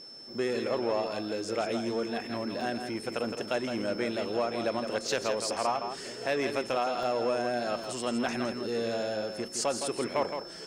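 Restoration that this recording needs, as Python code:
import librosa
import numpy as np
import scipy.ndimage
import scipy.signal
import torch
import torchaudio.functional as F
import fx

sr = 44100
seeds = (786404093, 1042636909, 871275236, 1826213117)

y = fx.notch(x, sr, hz=5300.0, q=30.0)
y = fx.fix_interpolate(y, sr, at_s=(2.61, 7.03, 7.84), length_ms=1.3)
y = fx.fix_echo_inverse(y, sr, delay_ms=164, level_db=-7.5)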